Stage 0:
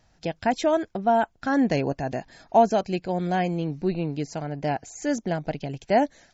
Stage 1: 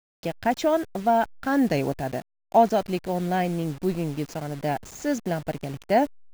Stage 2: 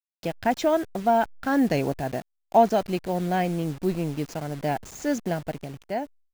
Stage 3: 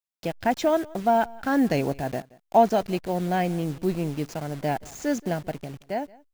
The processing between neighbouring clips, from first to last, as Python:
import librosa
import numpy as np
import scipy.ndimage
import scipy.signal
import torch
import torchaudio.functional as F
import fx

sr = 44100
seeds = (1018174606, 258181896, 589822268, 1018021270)

y1 = fx.delta_hold(x, sr, step_db=-37.5)
y2 = fx.fade_out_tail(y1, sr, length_s=1.06)
y3 = y2 + 10.0 ** (-23.0 / 20.0) * np.pad(y2, (int(176 * sr / 1000.0), 0))[:len(y2)]